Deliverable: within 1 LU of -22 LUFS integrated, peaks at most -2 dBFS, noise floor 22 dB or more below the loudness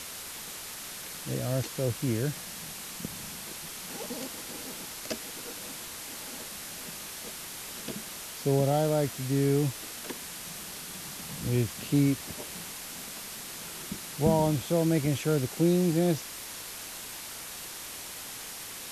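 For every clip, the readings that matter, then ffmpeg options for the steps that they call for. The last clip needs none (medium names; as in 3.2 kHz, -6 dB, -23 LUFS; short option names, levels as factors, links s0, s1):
noise floor -41 dBFS; noise floor target -54 dBFS; loudness -31.5 LUFS; peak level -10.5 dBFS; loudness target -22.0 LUFS
-> -af "afftdn=nr=13:nf=-41"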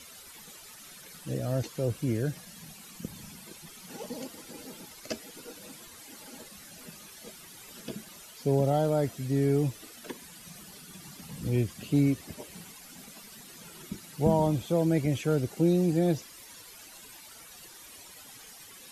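noise floor -50 dBFS; noise floor target -51 dBFS
-> -af "afftdn=nr=6:nf=-50"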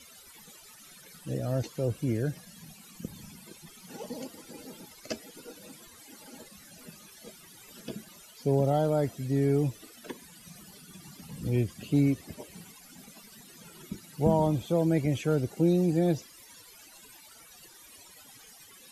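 noise floor -53 dBFS; loudness -28.5 LUFS; peak level -10.5 dBFS; loudness target -22.0 LUFS
-> -af "volume=2.11"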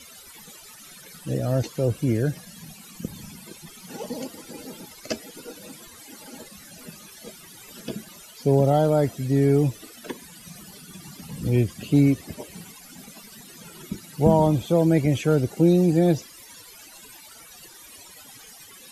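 loudness -22.0 LUFS; peak level -4.0 dBFS; noise floor -47 dBFS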